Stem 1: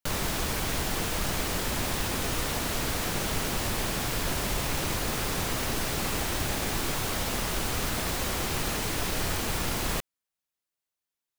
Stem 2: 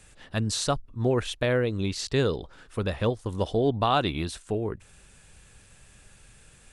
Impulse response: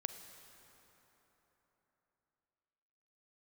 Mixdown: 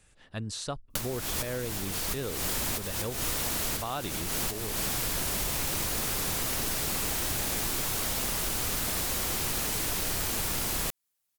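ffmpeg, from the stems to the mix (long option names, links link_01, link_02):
-filter_complex "[0:a]aemphasis=mode=production:type=cd,adelay=900,volume=2dB[link_01];[1:a]volume=-8dB,asplit=3[link_02][link_03][link_04];[link_02]atrim=end=3.26,asetpts=PTS-STARTPTS,afade=type=out:start_time=3.256:duration=0.004:curve=hsin[link_05];[link_03]atrim=start=3.26:end=3.76,asetpts=PTS-STARTPTS,volume=0[link_06];[link_04]atrim=start=3.76,asetpts=PTS-STARTPTS,afade=type=in:duration=0.004:curve=hsin[link_07];[link_05][link_06][link_07]concat=n=3:v=0:a=1,asplit=2[link_08][link_09];[link_09]apad=whole_len=541779[link_10];[link_01][link_10]sidechaincompress=threshold=-44dB:ratio=5:attack=16:release=158[link_11];[link_11][link_08]amix=inputs=2:normalize=0,acompressor=threshold=-29dB:ratio=3"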